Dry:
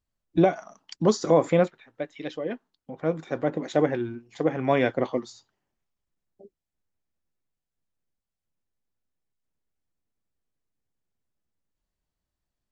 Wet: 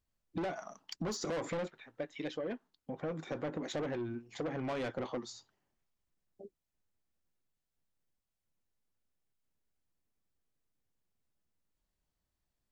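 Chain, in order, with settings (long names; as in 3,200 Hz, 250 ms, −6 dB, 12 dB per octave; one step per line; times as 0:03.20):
soft clipping −25.5 dBFS, distortion −5 dB
downward compressor, threshold −34 dBFS, peak gain reduction 7 dB
level −1 dB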